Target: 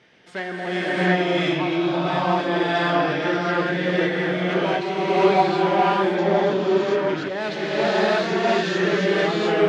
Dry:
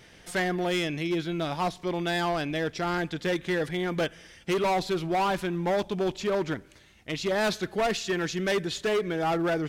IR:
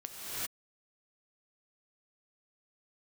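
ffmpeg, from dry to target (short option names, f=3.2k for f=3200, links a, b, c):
-filter_complex "[0:a]highpass=170,lowpass=3.7k[a];[1:a]atrim=start_sample=2205,asetrate=24255,aresample=44100[b];[a][b]afir=irnorm=-1:irlink=0"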